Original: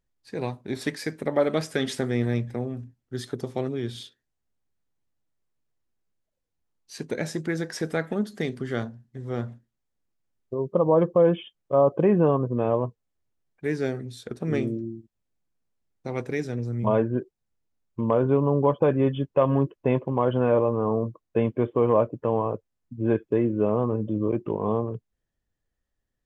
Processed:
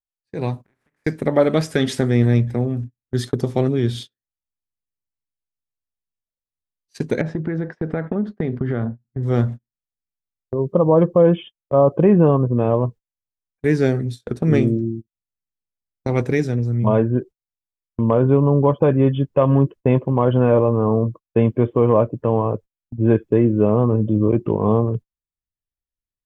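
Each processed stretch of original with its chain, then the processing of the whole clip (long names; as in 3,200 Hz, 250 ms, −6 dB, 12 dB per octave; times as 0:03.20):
0:00.63–0:01.04: compressing power law on the bin magnitudes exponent 0.4 + downward compressor 16 to 1, threshold −41 dBFS + high shelf with overshoot 2,800 Hz −13.5 dB, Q 1.5
0:07.21–0:09.23: low-pass filter 1,600 Hz + downward compressor 4 to 1, threshold −30 dBFS
whole clip: noise gate −39 dBFS, range −29 dB; low-shelf EQ 210 Hz +8.5 dB; automatic gain control; level −2.5 dB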